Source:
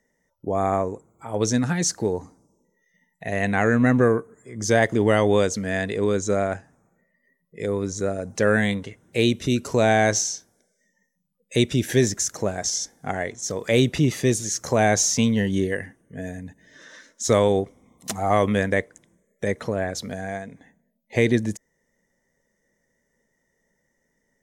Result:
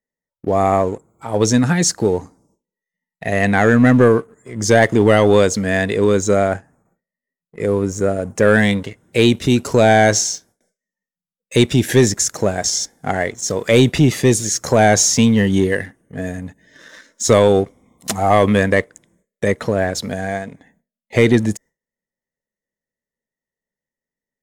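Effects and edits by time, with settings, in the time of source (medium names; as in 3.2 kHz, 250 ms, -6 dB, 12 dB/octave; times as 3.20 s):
6.49–8.48 s: peaking EQ 4 kHz -13 dB 0.81 oct
whole clip: band-stop 6 kHz, Q 16; waveshaping leveller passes 1; gate with hold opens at -55 dBFS; trim +4 dB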